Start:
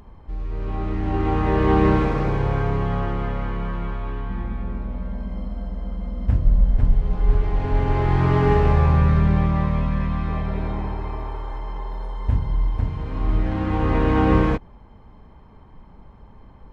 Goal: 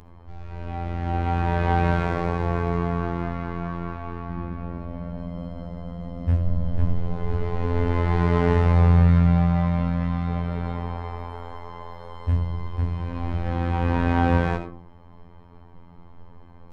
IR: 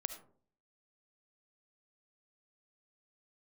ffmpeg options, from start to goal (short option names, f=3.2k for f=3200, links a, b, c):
-filter_complex "[1:a]atrim=start_sample=2205[a];[0:a][a]afir=irnorm=-1:irlink=0,afftfilt=real='hypot(re,im)*cos(PI*b)':imag='0':win_size=2048:overlap=0.75,volume=3.5dB"